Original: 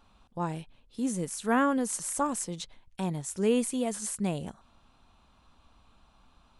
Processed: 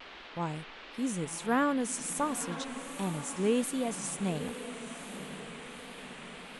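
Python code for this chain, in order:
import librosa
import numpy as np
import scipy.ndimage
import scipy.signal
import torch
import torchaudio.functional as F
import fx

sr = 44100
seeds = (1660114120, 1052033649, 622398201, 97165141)

y = fx.dmg_noise_band(x, sr, seeds[0], low_hz=220.0, high_hz=3300.0, level_db=-46.0)
y = fx.echo_diffused(y, sr, ms=979, feedback_pct=50, wet_db=-11.5)
y = fx.vibrato(y, sr, rate_hz=1.4, depth_cents=55.0)
y = y * librosa.db_to_amplitude(-2.5)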